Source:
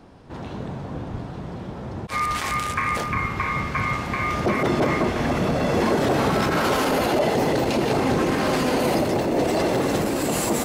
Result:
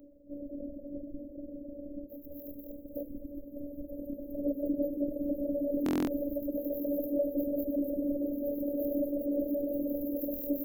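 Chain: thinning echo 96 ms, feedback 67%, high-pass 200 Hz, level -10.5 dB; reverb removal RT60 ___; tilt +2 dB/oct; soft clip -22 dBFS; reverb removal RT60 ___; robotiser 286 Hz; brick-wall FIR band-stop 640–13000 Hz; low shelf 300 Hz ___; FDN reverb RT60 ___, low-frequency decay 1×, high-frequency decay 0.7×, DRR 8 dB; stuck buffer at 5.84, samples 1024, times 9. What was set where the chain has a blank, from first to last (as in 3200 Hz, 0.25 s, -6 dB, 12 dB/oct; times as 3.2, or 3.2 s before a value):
0.51 s, 1.2 s, +2 dB, 2 s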